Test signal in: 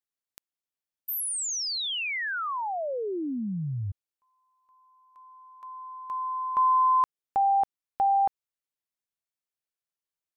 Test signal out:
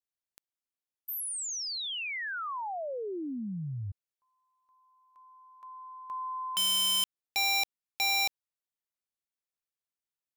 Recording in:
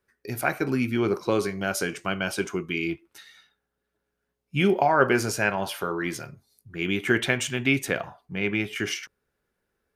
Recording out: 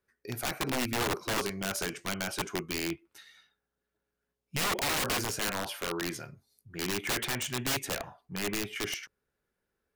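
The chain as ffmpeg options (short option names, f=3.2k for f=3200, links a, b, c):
-af "aeval=exprs='(mod(9.44*val(0)+1,2)-1)/9.44':c=same,volume=-5dB"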